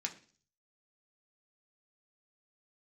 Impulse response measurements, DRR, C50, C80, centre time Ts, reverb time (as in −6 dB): 1.0 dB, 14.5 dB, 18.5 dB, 9 ms, 0.45 s